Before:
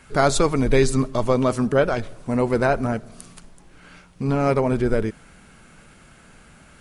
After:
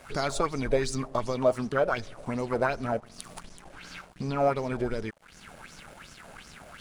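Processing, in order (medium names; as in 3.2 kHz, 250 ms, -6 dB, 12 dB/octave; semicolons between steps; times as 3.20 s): compression 2:1, threshold -41 dBFS, peak gain reduction 15.5 dB; crossover distortion -53 dBFS; sweeping bell 2.7 Hz 570–6100 Hz +15 dB; trim +2.5 dB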